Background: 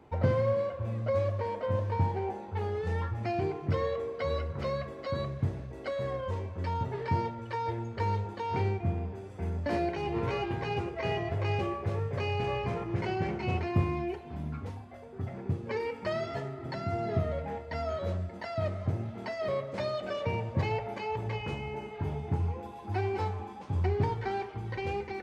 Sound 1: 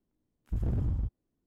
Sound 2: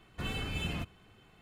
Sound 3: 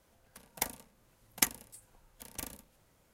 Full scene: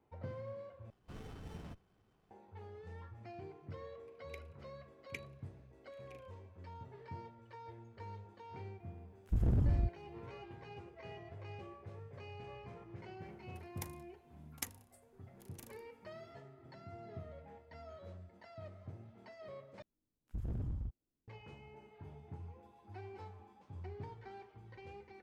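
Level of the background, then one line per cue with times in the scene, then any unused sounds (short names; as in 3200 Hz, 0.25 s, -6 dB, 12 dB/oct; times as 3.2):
background -18.5 dB
0.9 replace with 2 -12 dB + running maximum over 17 samples
3.72 add 3 -6 dB + double band-pass 1000 Hz, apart 2.5 oct
8.8 add 1 -0.5 dB
13.2 add 3 -14.5 dB
19.82 replace with 1 -9.5 dB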